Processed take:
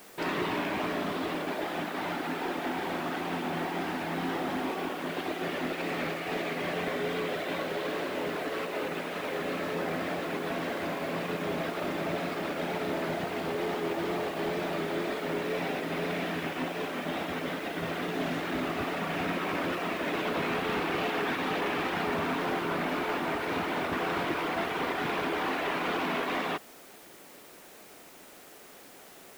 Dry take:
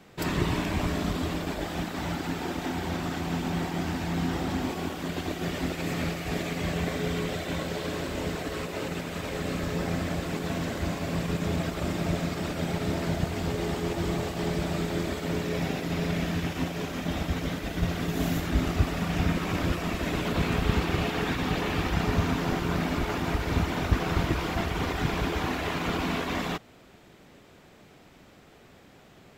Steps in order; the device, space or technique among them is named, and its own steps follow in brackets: tape answering machine (BPF 320–3100 Hz; soft clip -26 dBFS, distortion -19 dB; wow and flutter; white noise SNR 22 dB); gain +3 dB

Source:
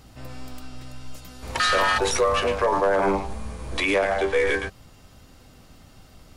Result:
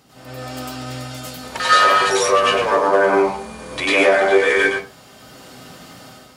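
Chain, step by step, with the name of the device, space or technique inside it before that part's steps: far laptop microphone (reverb RT60 0.35 s, pre-delay 91 ms, DRR -6.5 dB; HPF 180 Hz 12 dB/oct; AGC gain up to 8 dB); gain -1 dB

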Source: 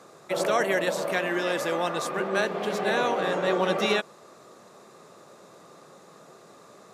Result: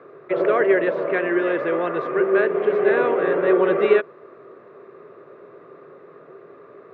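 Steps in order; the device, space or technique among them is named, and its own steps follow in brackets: bass cabinet (speaker cabinet 89–2200 Hz, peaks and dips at 200 Hz -10 dB, 400 Hz +10 dB, 820 Hz -10 dB); gain +4.5 dB

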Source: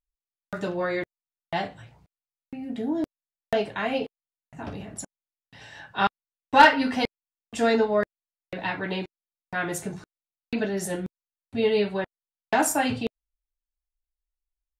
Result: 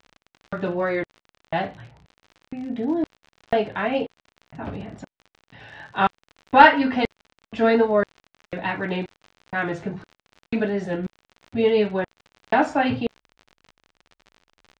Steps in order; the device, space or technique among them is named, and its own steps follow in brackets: lo-fi chain (LPF 3800 Hz 12 dB/oct; wow and flutter; crackle 52/s -35 dBFS); air absorption 130 m; gain +4 dB

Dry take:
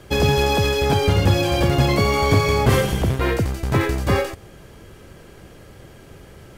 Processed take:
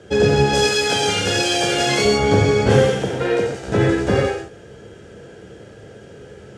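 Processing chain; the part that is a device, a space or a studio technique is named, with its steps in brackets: car door speaker (speaker cabinet 85–7900 Hz, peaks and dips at 460 Hz +9 dB, 1100 Hz -10 dB, 1500 Hz +5 dB, 2200 Hz -5 dB, 4300 Hz -5 dB); 0.53–2.05 tilt +4 dB/oct; 2.74–3.67 HPF 210 Hz -> 490 Hz 6 dB/oct; non-linear reverb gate 0.17 s flat, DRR -0.5 dB; gain -1 dB

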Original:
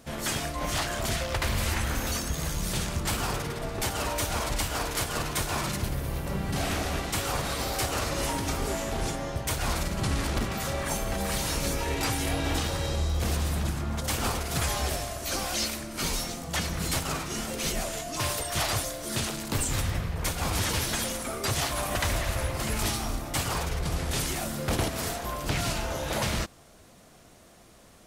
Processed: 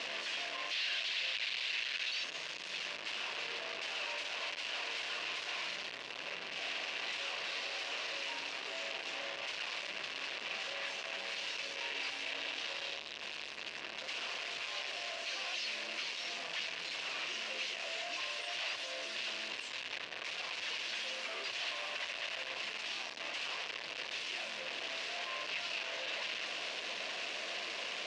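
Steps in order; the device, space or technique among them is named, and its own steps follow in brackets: 0.71–2.24 graphic EQ 125/250/500/1000/2000/4000/8000 Hz -3/-11/-7/-10/+3/+10/-6 dB; home computer beeper (infinite clipping; speaker cabinet 740–4800 Hz, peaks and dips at 830 Hz -8 dB, 1300 Hz -8 dB, 2700 Hz +8 dB); gain -6 dB

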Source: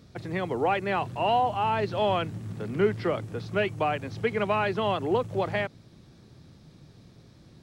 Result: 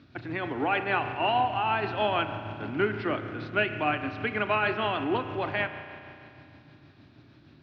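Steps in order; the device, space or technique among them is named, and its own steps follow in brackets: combo amplifier with spring reverb and tremolo (spring tank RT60 2.6 s, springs 33 ms, chirp 55 ms, DRR 7.5 dB; tremolo 6.4 Hz, depth 30%; speaker cabinet 88–4300 Hz, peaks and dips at 180 Hz -10 dB, 290 Hz +8 dB, 480 Hz -10 dB, 1500 Hz +7 dB, 2600 Hz +6 dB)

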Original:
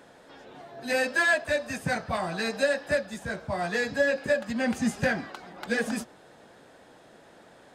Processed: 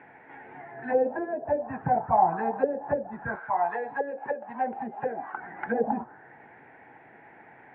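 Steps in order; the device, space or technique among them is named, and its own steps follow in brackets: envelope filter bass rig (envelope low-pass 450–2300 Hz down, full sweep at -21 dBFS; speaker cabinet 80–2200 Hz, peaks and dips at 130 Hz +4 dB, 190 Hz -4 dB, 560 Hz -9 dB, 840 Hz +9 dB, 1200 Hz -9 dB); 3.35–5.34 weighting filter ITU-R 468

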